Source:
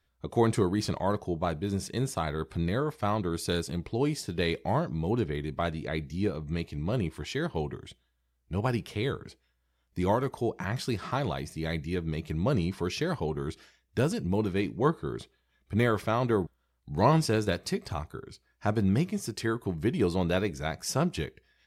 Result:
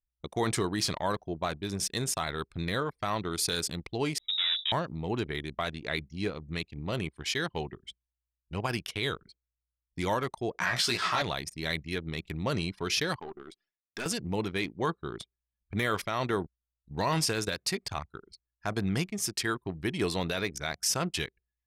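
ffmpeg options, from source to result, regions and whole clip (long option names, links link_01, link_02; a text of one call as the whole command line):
ffmpeg -i in.wav -filter_complex "[0:a]asettb=1/sr,asplit=3[link_01][link_02][link_03];[link_01]atrim=end=4.184[link_04];[link_02]atrim=start=4.18:end=4.72,asetpts=PTS-STARTPTS,afade=type=in:duration=0.004:curve=qsin,afade=type=out:start_time=0.536:duration=0.004:curve=qsin,bandreject=frequency=50:width_type=h:width=6,bandreject=frequency=100:width_type=h:width=6,bandreject=frequency=150:width_type=h:width=6,bandreject=frequency=200:width_type=h:width=6,bandreject=frequency=250:width_type=h:width=6,bandreject=frequency=300:width_type=h:width=6,bandreject=frequency=350:width_type=h:width=6,bandreject=frequency=400:width_type=h:width=6,bandreject=frequency=450:width_type=h:width=6,aeval=exprs='(tanh(44.7*val(0)+0.2)-tanh(0.2))/44.7':channel_layout=same,lowpass=frequency=3300:width_type=q:width=0.5098,lowpass=frequency=3300:width_type=q:width=0.6013,lowpass=frequency=3300:width_type=q:width=0.9,lowpass=frequency=3300:width_type=q:width=2.563,afreqshift=-3900[link_05];[link_03]atrim=start=4.716[link_06];[link_04][link_05]acrossfade=duration=0.004:curve1=hsin:curve2=qsin[link_07];[link_07][link_06]acrossfade=duration=0.004:curve1=qsin:curve2=hsin,asettb=1/sr,asplit=3[link_08][link_09][link_10];[link_08]atrim=end=10.524[link_11];[link_09]atrim=start=10.52:end=11.22,asetpts=PTS-STARTPTS,afade=type=in:duration=0.004:curve=qsin,afade=type=out:start_time=0.696:duration=0.004:curve=qsin,asplit=2[link_12][link_13];[link_13]highpass=frequency=720:poles=1,volume=11dB,asoftclip=type=tanh:threshold=-15dB[link_14];[link_12][link_14]amix=inputs=2:normalize=0,lowpass=frequency=4800:poles=1,volume=-6dB,asplit=2[link_15][link_16];[link_16]adelay=17,volume=-3dB[link_17];[link_15][link_17]amix=inputs=2:normalize=0,atrim=end_sample=30870[link_18];[link_10]atrim=start=11.216[link_19];[link_11][link_18]acrossfade=duration=0.004:curve1=hsin:curve2=qsin[link_20];[link_20][link_19]acrossfade=duration=0.004:curve1=qsin:curve2=hsin,asettb=1/sr,asplit=3[link_21][link_22][link_23];[link_21]atrim=end=13.194[link_24];[link_22]atrim=start=13.19:end=14.06,asetpts=PTS-STARTPTS,afade=type=in:duration=0.004:curve=qsin,afade=type=out:start_time=0.866:duration=0.004:curve=qsin,highpass=260,equalizer=frequency=500:width_type=o:width=0.21:gain=-13,aeval=exprs='(tanh(28.2*val(0)+0.5)-tanh(0.5))/28.2':channel_layout=same[link_25];[link_23]atrim=start=14.056[link_26];[link_24][link_25]acrossfade=duration=0.004:curve1=hsin:curve2=qsin[link_27];[link_27][link_26]acrossfade=duration=0.004:curve1=qsin:curve2=hsin,tiltshelf=frequency=1100:gain=-7,anlmdn=0.631,alimiter=limit=-19.5dB:level=0:latency=1:release=24,volume=2dB" out.wav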